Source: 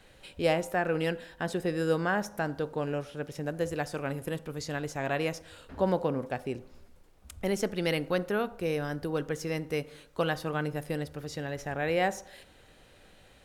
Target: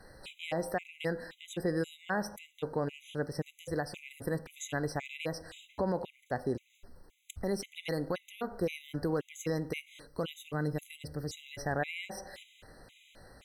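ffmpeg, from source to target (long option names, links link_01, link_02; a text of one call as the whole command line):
ffmpeg -i in.wav -filter_complex "[0:a]asettb=1/sr,asplit=3[link_01][link_02][link_03];[link_01]atrim=end=10.074[link_04];[link_02]atrim=start=10.07:end=11.51,asetpts=PTS-STARTPTS,afade=type=in:duration=0.004:curve=qsin,afade=type=out:start_time=1.436:duration=0.004:curve=qsin,equalizer=frequency=1100:width=0.51:gain=-6.5[link_05];[link_03]atrim=start=11.506[link_06];[link_04][link_05]acrossfade=duration=0.004:curve1=hsin:curve2=qsin[link_07];[link_07][link_06]acrossfade=duration=0.004:curve1=qsin:curve2=hsin,alimiter=level_in=1dB:limit=-24dB:level=0:latency=1:release=200,volume=-1dB,afftfilt=real='re*gt(sin(2*PI*1.9*pts/sr)*(1-2*mod(floor(b*sr/1024/2000),2)),0)':imag='im*gt(sin(2*PI*1.9*pts/sr)*(1-2*mod(floor(b*sr/1024/2000),2)),0)':win_size=1024:overlap=0.75,volume=3.5dB" out.wav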